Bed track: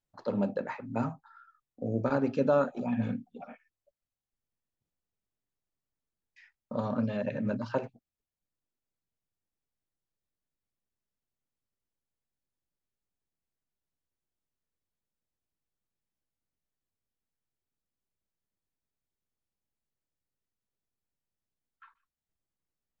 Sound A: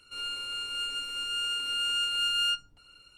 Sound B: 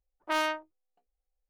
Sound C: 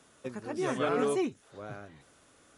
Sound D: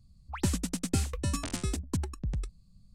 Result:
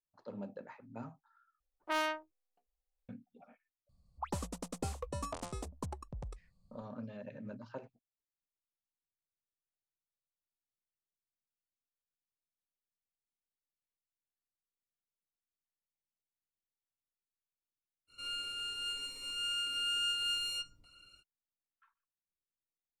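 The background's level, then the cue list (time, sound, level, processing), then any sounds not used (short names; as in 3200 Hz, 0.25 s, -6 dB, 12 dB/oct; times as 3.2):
bed track -14.5 dB
1.6 replace with B -5 dB
3.89 add D -11.5 dB + band shelf 730 Hz +13 dB
18.07 add A -4 dB, fades 0.05 s + cascading phaser rising 0.74 Hz
not used: C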